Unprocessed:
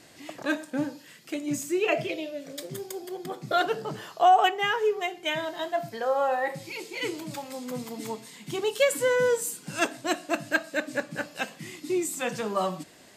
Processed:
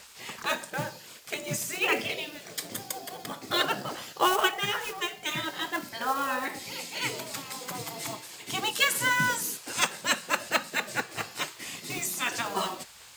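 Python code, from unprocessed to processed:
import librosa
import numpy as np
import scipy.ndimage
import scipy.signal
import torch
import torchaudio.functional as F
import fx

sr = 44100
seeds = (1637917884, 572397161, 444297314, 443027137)

y = fx.quant_companded(x, sr, bits=6)
y = fx.spec_gate(y, sr, threshold_db=-10, keep='weak')
y = y * 10.0 ** (6.5 / 20.0)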